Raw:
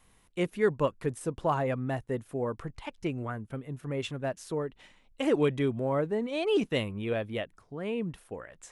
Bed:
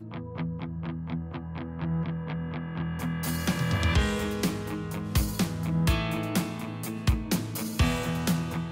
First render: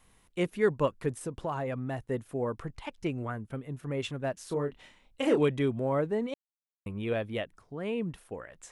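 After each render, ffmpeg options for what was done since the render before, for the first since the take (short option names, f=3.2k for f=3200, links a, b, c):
-filter_complex "[0:a]asettb=1/sr,asplit=3[a][b][c];[a]atrim=end=1.254[d];[b]atrim=start=1.25:end=2.07,asetpts=PTS-STARTPTS,afade=t=in:d=0.004:c=qsin,afade=t=out:st=0.816:d=0.004:c=qsin,acompressor=threshold=-31dB:ratio=2.5:attack=3.2:release=140:knee=1:detection=peak[e];[c]atrim=start=2.066[f];[d][e]acrossfade=d=0.004:c1=hsin:c2=qsin[g];[g][f]acrossfade=d=0.004:c1=qsin:c2=hsin,asettb=1/sr,asplit=3[h][i][j];[h]atrim=end=4.454[k];[i]atrim=start=4.45:end=5.41,asetpts=PTS-STARTPTS,afade=t=in:d=0.004:c=qsin,afade=t=out:st=0.956:d=0.004:c=qsin,asplit=2[l][m];[m]adelay=28,volume=-6dB[n];[l][n]amix=inputs=2:normalize=0,atrim=end_sample=42336[o];[j]atrim=start=5.406[p];[k][o]acrossfade=d=0.004:c1=hsin:c2=qsin[q];[q][p]acrossfade=d=0.004:c1=qsin:c2=hsin,asplit=3[r][s][t];[r]atrim=end=6.34,asetpts=PTS-STARTPTS,afade=t=out:st=6.336:d=0.004:c=hsin[u];[s]atrim=start=6.34:end=6.86,asetpts=PTS-STARTPTS,volume=0[v];[t]atrim=start=6.86,asetpts=PTS-STARTPTS,afade=t=in:d=0.004:c=hsin[w];[u][v][w]concat=n=3:v=0:a=1"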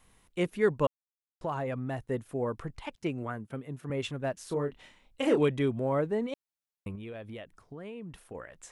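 -filter_complex "[0:a]asettb=1/sr,asplit=3[a][b][c];[a]atrim=end=2.954[d];[b]atrim=start=2.95:end=3.9,asetpts=PTS-STARTPTS,afade=t=in:d=0.004:c=qsin,afade=t=out:st=0.946:d=0.004:c=qsin,highpass=120[e];[c]atrim=start=3.896[f];[d][e]acrossfade=d=0.004:c1=hsin:c2=qsin[g];[g][f]acrossfade=d=0.004:c1=qsin:c2=hsin,asettb=1/sr,asplit=3[h][i][j];[h]atrim=end=6.954[k];[i]atrim=start=6.95:end=8.35,asetpts=PTS-STARTPTS,afade=t=in:d=0.004:c=qsin,afade=t=out:st=1.396:d=0.004:c=qsin,acompressor=threshold=-39dB:ratio=6:attack=3.2:release=140:knee=1:detection=peak[l];[j]atrim=start=8.346[m];[k][l]acrossfade=d=0.004:c1=hsin:c2=qsin[n];[n][m]acrossfade=d=0.004:c1=qsin:c2=hsin,asplit=3[o][p][q];[o]atrim=end=0.87,asetpts=PTS-STARTPTS,afade=t=out:st=0.866:d=0.004:c=hsin[r];[p]atrim=start=0.87:end=1.41,asetpts=PTS-STARTPTS,volume=0[s];[q]atrim=start=1.41,asetpts=PTS-STARTPTS,afade=t=in:d=0.004:c=hsin[t];[r][s][t]concat=n=3:v=0:a=1"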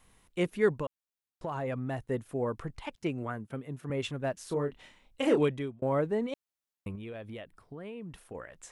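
-filter_complex "[0:a]asettb=1/sr,asplit=3[a][b][c];[a]atrim=end=0.794[d];[b]atrim=start=0.79:end=1.64,asetpts=PTS-STARTPTS,afade=t=in:d=0.004:c=qsin,afade=t=out:st=0.846:d=0.004:c=qsin,acompressor=threshold=-30dB:ratio=6:attack=3.2:release=140:knee=1:detection=peak[e];[c]atrim=start=1.636[f];[d][e]acrossfade=d=0.004:c1=hsin:c2=qsin[g];[g][f]acrossfade=d=0.004:c1=qsin:c2=hsin,asettb=1/sr,asplit=3[h][i][j];[h]atrim=end=7.414[k];[i]atrim=start=7.41:end=8,asetpts=PTS-STARTPTS,afade=t=in:d=0.004:c=qsin,afade=t=out:st=0.586:d=0.004:c=qsin,equalizer=f=6.4k:w=3.8:g=-10[l];[j]atrim=start=7.996[m];[k][l]acrossfade=d=0.004:c1=hsin:c2=qsin[n];[n][m]acrossfade=d=0.004:c1=qsin:c2=hsin,asplit=2[o][p];[o]atrim=end=5.82,asetpts=PTS-STARTPTS,afade=t=out:st=5.39:d=0.43[q];[p]atrim=start=5.82,asetpts=PTS-STARTPTS,afade=t=in:d=0.004:c=hsin[r];[q][r]concat=n=2:v=0:a=1"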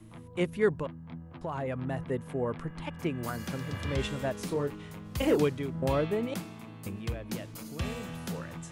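-filter_complex "[1:a]volume=-10.5dB[a];[0:a][a]amix=inputs=2:normalize=0"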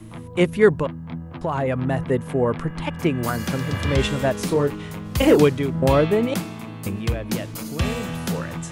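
-af "volume=11dB,alimiter=limit=-3dB:level=0:latency=1"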